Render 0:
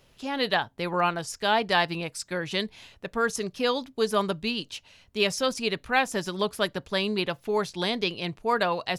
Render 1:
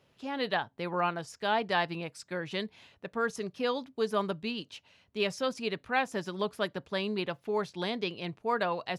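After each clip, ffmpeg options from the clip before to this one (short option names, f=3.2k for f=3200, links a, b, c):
-af "highpass=95,highshelf=f=4.6k:g=-10.5,volume=-4.5dB"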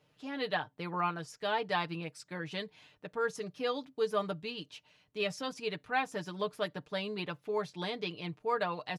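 -af "aecho=1:1:6.6:0.65,volume=-4.5dB"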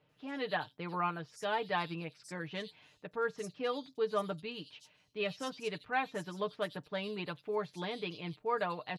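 -filter_complex "[0:a]acrossover=split=4400[a][b];[b]adelay=90[c];[a][c]amix=inputs=2:normalize=0,volume=-1.5dB"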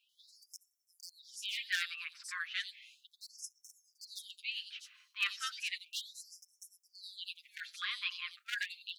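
-af "aeval=exprs='0.0501*(abs(mod(val(0)/0.0501+3,4)-2)-1)':c=same,afftfilt=real='re*gte(b*sr/1024,970*pow(5400/970,0.5+0.5*sin(2*PI*0.34*pts/sr)))':imag='im*gte(b*sr/1024,970*pow(5400/970,0.5+0.5*sin(2*PI*0.34*pts/sr)))':win_size=1024:overlap=0.75,volume=6.5dB"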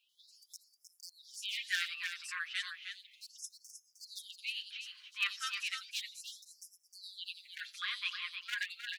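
-af "aecho=1:1:310:0.422"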